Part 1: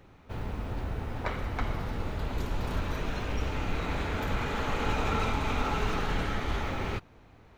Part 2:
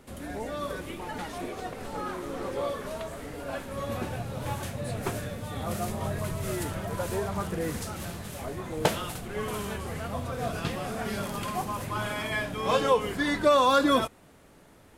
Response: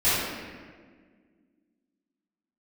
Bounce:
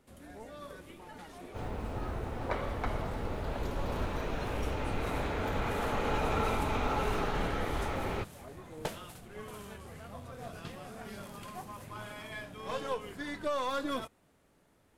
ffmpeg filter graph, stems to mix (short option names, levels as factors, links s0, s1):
-filter_complex "[0:a]equalizer=f=570:w=0.67:g=6,adelay=1250,volume=0.596[s0];[1:a]aeval=exprs='0.316*(cos(1*acos(clip(val(0)/0.316,-1,1)))-cos(1*PI/2))+0.0251*(cos(6*acos(clip(val(0)/0.316,-1,1)))-cos(6*PI/2))':c=same,volume=0.237[s1];[s0][s1]amix=inputs=2:normalize=0"